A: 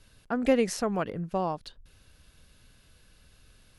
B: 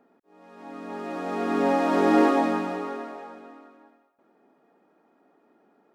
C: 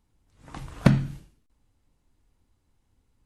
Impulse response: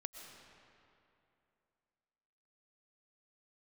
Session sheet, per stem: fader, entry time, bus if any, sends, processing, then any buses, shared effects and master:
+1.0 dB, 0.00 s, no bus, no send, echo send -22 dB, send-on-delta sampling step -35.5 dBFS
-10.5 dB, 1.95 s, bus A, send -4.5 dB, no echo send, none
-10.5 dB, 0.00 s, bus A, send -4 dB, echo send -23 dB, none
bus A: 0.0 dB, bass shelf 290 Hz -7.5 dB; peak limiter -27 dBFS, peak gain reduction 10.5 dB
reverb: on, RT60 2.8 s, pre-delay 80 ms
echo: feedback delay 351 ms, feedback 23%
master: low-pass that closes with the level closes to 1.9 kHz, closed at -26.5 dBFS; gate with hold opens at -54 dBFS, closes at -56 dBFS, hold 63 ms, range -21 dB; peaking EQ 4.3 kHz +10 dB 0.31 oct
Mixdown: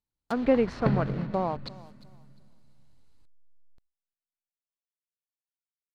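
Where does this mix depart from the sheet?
stem B: muted; stem C -10.5 dB -> -1.5 dB

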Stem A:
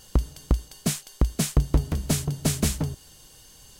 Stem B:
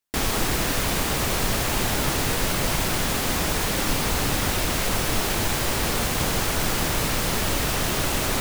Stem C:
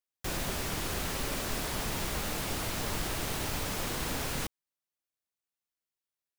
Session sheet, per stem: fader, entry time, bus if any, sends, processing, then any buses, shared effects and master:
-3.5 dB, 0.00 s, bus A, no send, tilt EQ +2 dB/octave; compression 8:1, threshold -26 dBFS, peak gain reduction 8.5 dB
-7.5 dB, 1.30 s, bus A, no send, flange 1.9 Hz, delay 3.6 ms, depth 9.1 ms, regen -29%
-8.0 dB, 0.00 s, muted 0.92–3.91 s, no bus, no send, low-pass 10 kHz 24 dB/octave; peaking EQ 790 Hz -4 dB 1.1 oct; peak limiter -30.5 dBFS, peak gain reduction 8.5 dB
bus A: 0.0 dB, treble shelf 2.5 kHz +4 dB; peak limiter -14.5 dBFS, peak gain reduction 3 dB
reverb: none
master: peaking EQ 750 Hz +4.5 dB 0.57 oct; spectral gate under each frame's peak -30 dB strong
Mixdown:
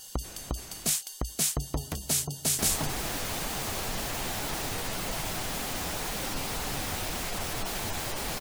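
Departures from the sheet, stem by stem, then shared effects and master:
stem A: missing compression 8:1, threshold -26 dBFS, peak gain reduction 8.5 dB; stem B: entry 1.30 s -> 2.45 s

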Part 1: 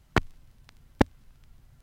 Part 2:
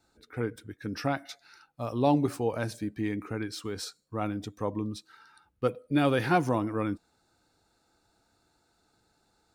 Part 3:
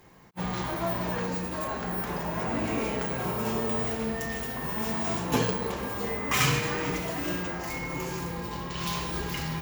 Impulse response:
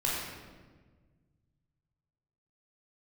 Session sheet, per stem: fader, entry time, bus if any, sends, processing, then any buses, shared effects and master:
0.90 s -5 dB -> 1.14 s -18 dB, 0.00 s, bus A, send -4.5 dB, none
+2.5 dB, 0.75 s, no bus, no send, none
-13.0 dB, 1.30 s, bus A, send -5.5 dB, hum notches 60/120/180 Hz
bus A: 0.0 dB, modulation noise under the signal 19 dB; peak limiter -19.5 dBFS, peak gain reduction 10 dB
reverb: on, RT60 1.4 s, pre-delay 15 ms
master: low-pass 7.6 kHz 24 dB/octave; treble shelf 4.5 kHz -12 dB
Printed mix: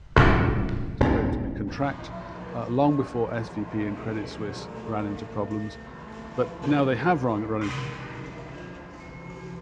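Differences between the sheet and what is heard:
stem 1 -5.0 dB -> +7.0 dB; stem 3: missing hum notches 60/120/180 Hz

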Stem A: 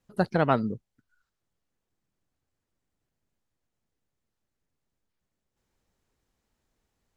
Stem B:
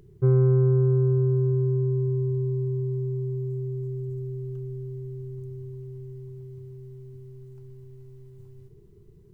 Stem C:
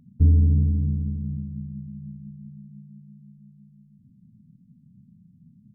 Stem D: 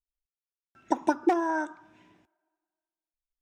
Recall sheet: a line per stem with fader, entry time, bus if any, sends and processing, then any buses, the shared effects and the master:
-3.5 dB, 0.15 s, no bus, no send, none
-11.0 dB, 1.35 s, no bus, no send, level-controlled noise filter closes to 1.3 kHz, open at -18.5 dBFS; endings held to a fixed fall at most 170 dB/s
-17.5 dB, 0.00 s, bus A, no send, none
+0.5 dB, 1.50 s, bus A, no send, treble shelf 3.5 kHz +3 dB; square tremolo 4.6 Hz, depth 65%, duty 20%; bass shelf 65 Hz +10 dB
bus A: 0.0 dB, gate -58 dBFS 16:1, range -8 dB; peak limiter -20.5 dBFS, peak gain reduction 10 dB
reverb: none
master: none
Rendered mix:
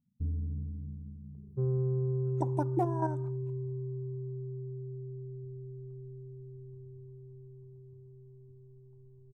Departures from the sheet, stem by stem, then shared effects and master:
stem A: muted; stem B: missing endings held to a fixed fall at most 170 dB/s; master: extra high-order bell 3 kHz -15 dB 2.6 oct

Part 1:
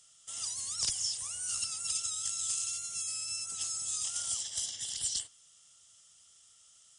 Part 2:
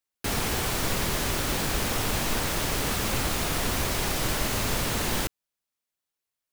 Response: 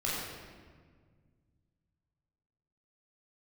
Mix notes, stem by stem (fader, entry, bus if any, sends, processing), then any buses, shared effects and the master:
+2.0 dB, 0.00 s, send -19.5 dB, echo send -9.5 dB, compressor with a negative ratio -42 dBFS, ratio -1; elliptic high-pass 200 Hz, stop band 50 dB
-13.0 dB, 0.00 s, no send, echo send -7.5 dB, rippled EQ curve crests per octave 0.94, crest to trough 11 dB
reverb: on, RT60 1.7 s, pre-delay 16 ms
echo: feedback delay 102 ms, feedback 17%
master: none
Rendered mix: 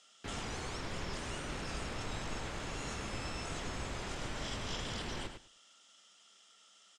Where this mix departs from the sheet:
stem 2: missing rippled EQ curve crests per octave 0.94, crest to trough 11 dB; master: extra low-pass 3.4 kHz 12 dB/octave

